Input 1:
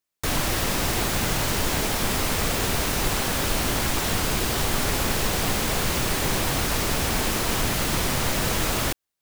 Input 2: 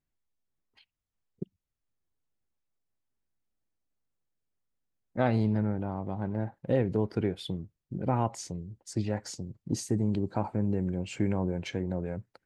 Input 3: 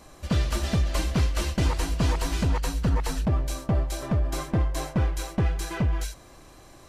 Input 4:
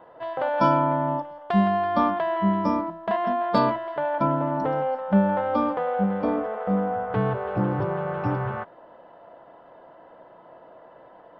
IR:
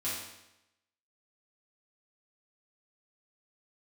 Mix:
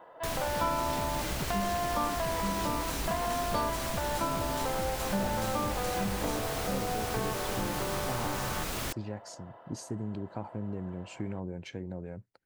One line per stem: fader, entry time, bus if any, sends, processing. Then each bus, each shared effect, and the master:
−8.0 dB, 0.00 s, no send, no processing
−6.5 dB, 0.00 s, no send, no processing
+1.5 dB, 0.25 s, no send, high-pass filter 150 Hz 6 dB per octave; brickwall limiter −27 dBFS, peak gain reduction 12.5 dB
−0.5 dB, 0.00 s, no send, low-shelf EQ 450 Hz −8.5 dB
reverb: not used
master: downward compressor 2 to 1, threshold −32 dBFS, peak gain reduction 8.5 dB

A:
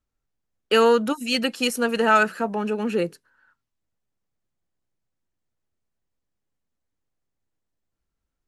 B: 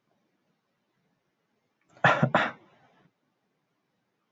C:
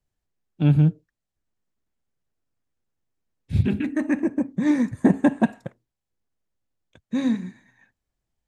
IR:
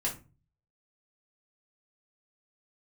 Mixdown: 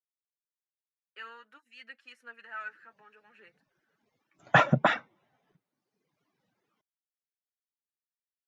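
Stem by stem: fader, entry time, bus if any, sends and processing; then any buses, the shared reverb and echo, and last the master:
−12.0 dB, 0.45 s, no send, resonant band-pass 1,800 Hz, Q 3.2; flanger 0.61 Hz, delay 3.1 ms, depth 5.1 ms, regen +32%
+0.5 dB, 2.50 s, no send, reverb reduction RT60 1.2 s
muted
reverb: not used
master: no processing

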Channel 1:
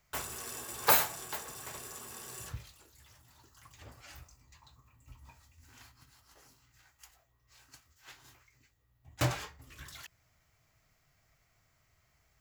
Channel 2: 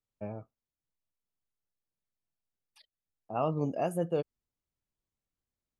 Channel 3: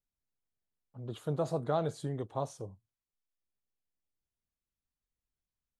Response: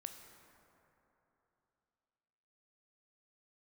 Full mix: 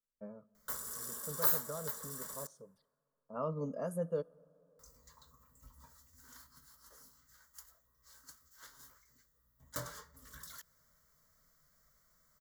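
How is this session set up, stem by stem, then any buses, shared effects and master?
+0.5 dB, 0.55 s, muted 0:02.47–0:04.79, send −17 dB, downward compressor 1.5 to 1, threshold −51 dBFS, peak gain reduction 11.5 dB; high-shelf EQ 9,100 Hz +8 dB
−4.5 dB, 0.00 s, send −14.5 dB, automatic ducking −13 dB, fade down 1.20 s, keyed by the third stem
−9.5 dB, 0.00 s, send −20.5 dB, no processing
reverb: on, RT60 3.2 s, pre-delay 13 ms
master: phaser with its sweep stopped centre 510 Hz, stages 8

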